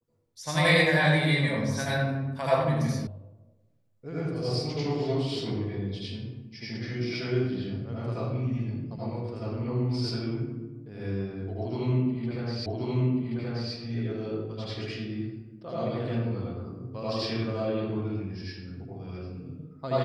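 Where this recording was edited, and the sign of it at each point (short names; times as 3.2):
3.07 sound cut off
12.66 repeat of the last 1.08 s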